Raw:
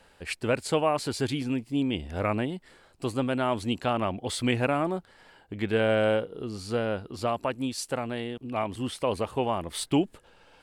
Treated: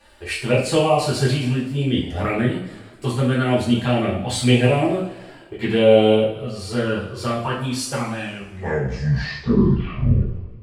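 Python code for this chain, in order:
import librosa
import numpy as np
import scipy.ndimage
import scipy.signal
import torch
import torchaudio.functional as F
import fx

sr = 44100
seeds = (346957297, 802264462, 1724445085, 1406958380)

y = fx.tape_stop_end(x, sr, length_s=2.68)
y = fx.env_flanger(y, sr, rest_ms=3.5, full_db=-20.5)
y = fx.rev_double_slope(y, sr, seeds[0], early_s=0.51, late_s=1.9, knee_db=-18, drr_db=-6.5)
y = y * 10.0 ** (3.5 / 20.0)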